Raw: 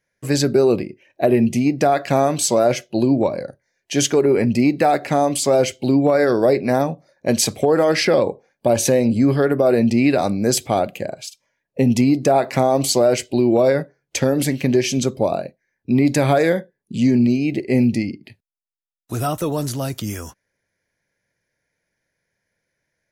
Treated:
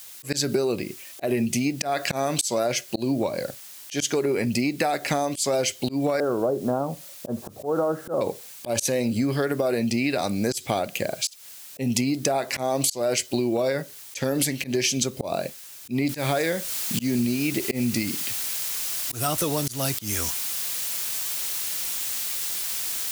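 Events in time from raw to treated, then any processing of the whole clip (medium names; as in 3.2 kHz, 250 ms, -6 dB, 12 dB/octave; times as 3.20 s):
6.20–8.21 s: steep low-pass 1.4 kHz 72 dB/octave
16.09 s: noise floor step -54 dB -40 dB
whole clip: treble shelf 2 kHz +12 dB; slow attack 215 ms; compression, threshold -21 dBFS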